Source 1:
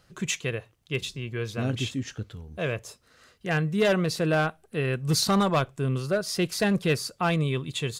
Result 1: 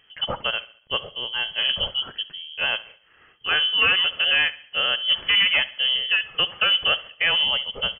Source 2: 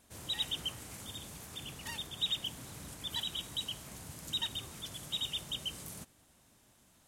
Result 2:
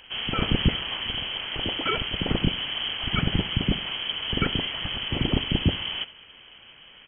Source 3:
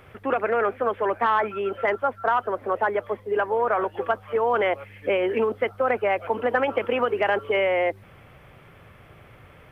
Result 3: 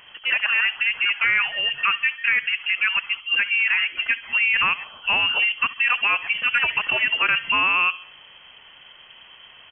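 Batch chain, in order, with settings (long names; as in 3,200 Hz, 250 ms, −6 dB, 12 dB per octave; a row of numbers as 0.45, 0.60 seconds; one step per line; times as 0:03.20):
voice inversion scrambler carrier 3,200 Hz
in parallel at +1.5 dB: brickwall limiter −16.5 dBFS
on the sum: dynamic equaliser 1,300 Hz, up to +5 dB, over −32 dBFS, Q 1.2
repeating echo 69 ms, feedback 44%, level −18.5 dB
normalise the peak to −9 dBFS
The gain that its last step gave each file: −4.0, +11.5, −5.5 decibels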